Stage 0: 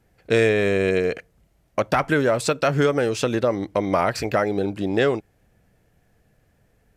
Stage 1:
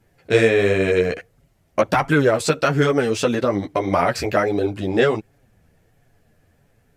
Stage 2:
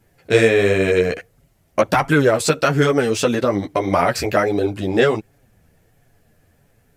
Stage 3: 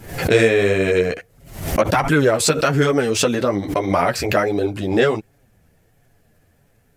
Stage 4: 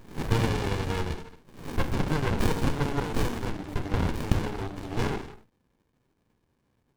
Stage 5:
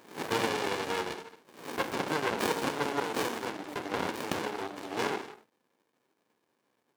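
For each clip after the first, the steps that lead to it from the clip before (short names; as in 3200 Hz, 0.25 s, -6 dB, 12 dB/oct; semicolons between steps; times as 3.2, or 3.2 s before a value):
chorus voices 2, 1.4 Hz, delay 10 ms, depth 3 ms; gain +5.5 dB
high shelf 8200 Hz +6.5 dB; gain +1.5 dB
backwards sustainer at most 89 dB/s; gain -1 dB
HPF 1100 Hz 6 dB/oct; non-linear reverb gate 0.3 s falling, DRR 6 dB; running maximum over 65 samples
HPF 370 Hz 12 dB/oct; gain +1.5 dB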